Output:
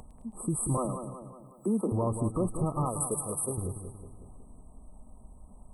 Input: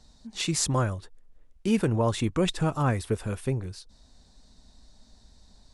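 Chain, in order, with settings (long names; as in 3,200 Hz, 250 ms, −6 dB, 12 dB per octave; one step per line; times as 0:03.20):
0:00.77–0:01.92: Butterworth high-pass 180 Hz 72 dB per octave
0:02.85–0:03.58: spectral tilt +4.5 dB per octave
brick-wall band-stop 1,300–7,900 Hz
in parallel at −2 dB: downward compressor, threshold −36 dBFS, peak gain reduction 16 dB
on the sum: brickwall limiter −18.5 dBFS, peak gain reduction 5.5 dB
upward compression, threshold −42 dBFS
echo with a time of its own for lows and highs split 2,000 Hz, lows 184 ms, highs 107 ms, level −8.5 dB
level −2 dB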